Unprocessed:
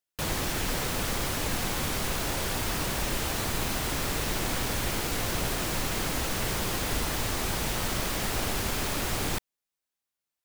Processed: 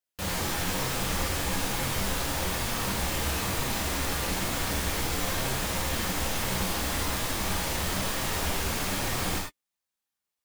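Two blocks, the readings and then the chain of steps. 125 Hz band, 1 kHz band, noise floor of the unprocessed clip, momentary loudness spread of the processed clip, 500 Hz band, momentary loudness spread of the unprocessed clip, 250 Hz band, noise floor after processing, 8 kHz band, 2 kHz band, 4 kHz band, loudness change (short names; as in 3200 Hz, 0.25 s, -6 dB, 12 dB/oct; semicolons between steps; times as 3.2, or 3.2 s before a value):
+0.5 dB, +1.0 dB, under -85 dBFS, 1 LU, 0.0 dB, 0 LU, +0.5 dB, under -85 dBFS, +0.5 dB, +1.0 dB, +0.5 dB, +0.5 dB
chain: flange 1.1 Hz, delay 7.5 ms, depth 6.1 ms, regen -17%; non-linear reverb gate 0.12 s flat, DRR -2 dB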